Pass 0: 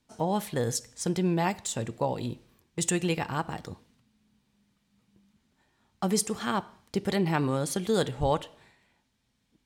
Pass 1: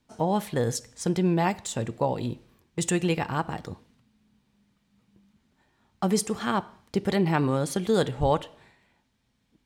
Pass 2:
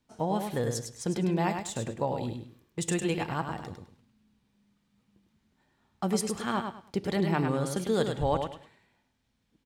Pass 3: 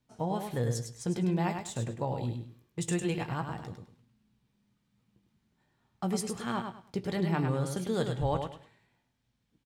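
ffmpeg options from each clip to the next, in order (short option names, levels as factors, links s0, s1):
-af "equalizer=f=13000:t=o:w=2.5:g=-5,volume=1.41"
-af "aecho=1:1:103|206|309:0.501|0.12|0.0289,volume=0.596"
-filter_complex "[0:a]equalizer=f=130:t=o:w=0.57:g=7,asplit=2[s0][s1];[s1]adelay=17,volume=0.299[s2];[s0][s2]amix=inputs=2:normalize=0,volume=0.631"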